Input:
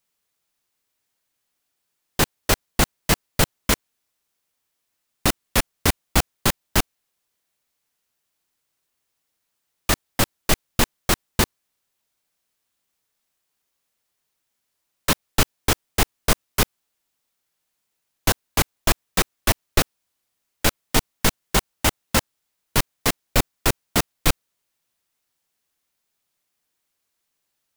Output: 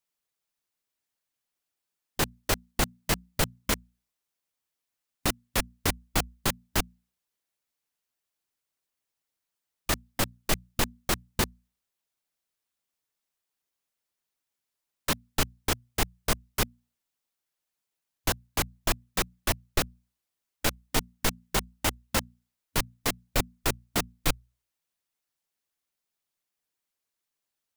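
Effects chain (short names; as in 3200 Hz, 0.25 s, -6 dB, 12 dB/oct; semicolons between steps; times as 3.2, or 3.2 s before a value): notches 60/120/180/240 Hz; harmonic-percussive split harmonic -5 dB; gain -7 dB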